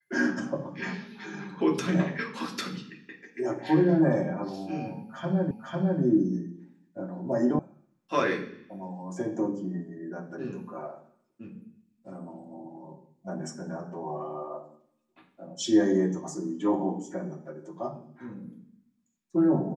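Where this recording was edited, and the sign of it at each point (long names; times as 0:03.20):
0:05.51: the same again, the last 0.5 s
0:07.59: cut off before it has died away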